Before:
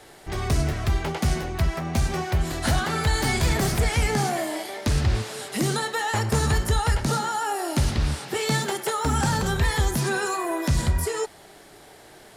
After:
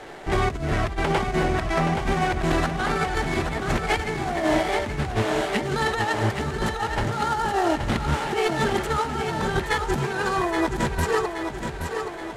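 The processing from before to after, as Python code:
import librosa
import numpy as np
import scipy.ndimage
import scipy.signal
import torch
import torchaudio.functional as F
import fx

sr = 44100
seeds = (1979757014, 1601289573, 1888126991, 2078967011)

y = scipy.ndimage.median_filter(x, 9, mode='constant')
y = scipy.signal.sosfilt(scipy.signal.butter(2, 9200.0, 'lowpass', fs=sr, output='sos'), y)
y = fx.peak_eq(y, sr, hz=79.0, db=-7.0, octaves=1.9)
y = fx.over_compress(y, sr, threshold_db=-30.0, ratio=-0.5)
y = fx.echo_feedback(y, sr, ms=824, feedback_pct=51, wet_db=-6.5)
y = y * librosa.db_to_amplitude(6.0)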